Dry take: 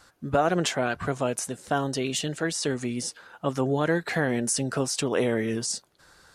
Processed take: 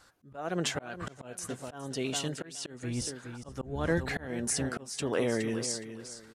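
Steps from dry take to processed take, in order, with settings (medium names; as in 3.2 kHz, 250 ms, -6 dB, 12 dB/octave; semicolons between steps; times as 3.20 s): 2.83–4.26 s: octave divider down 1 oct, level 0 dB; feedback delay 417 ms, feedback 26%, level -11 dB; slow attack 310 ms; trim -4.5 dB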